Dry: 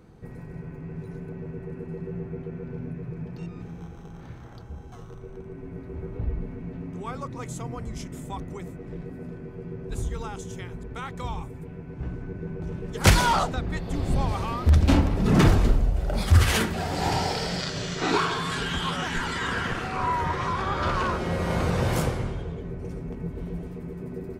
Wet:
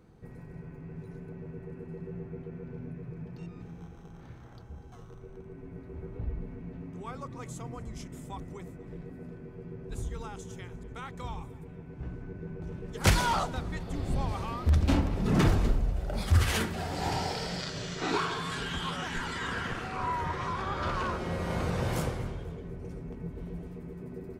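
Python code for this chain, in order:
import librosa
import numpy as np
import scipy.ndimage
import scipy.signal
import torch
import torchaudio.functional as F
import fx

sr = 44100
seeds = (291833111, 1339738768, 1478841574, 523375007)

y = fx.echo_feedback(x, sr, ms=245, feedback_pct=42, wet_db=-21.5)
y = F.gain(torch.from_numpy(y), -6.0).numpy()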